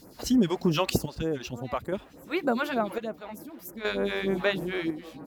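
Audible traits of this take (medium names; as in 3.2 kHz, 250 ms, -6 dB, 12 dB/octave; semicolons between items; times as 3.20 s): a quantiser's noise floor 12-bit, dither none; chopped level 0.52 Hz, depth 60%, duty 55%; phasing stages 2, 3.3 Hz, lowest notch 130–3600 Hz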